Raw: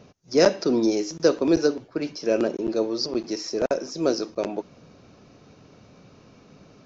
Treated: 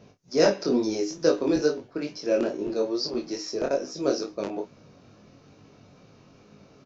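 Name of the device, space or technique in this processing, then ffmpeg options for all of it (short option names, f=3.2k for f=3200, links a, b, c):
double-tracked vocal: -filter_complex "[0:a]asplit=2[a][b];[b]adelay=29,volume=-8.5dB[c];[a][c]amix=inputs=2:normalize=0,flanger=delay=19:depth=3.1:speed=2.3"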